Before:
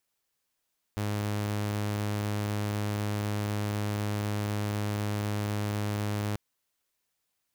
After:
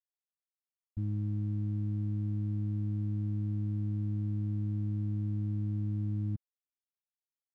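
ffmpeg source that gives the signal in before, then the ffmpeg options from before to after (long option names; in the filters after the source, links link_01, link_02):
-f lavfi -i "aevalsrc='0.0501*(2*mod(104*t,1)-1)':duration=5.39:sample_rate=44100"
-af "afftfilt=real='re*gte(hypot(re,im),0.0891)':imag='im*gte(hypot(re,im),0.0891)':win_size=1024:overlap=0.75,aeval=exprs='sgn(val(0))*max(abs(val(0))-0.00112,0)':channel_layout=same"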